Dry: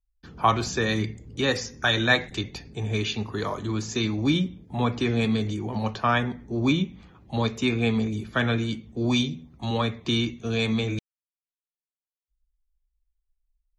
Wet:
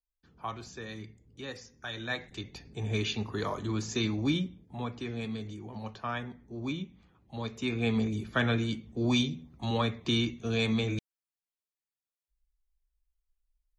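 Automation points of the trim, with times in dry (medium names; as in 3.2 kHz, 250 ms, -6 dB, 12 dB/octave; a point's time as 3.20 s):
1.87 s -17 dB
2.90 s -4 dB
4.13 s -4 dB
4.93 s -12.5 dB
7.36 s -12.5 dB
7.99 s -3.5 dB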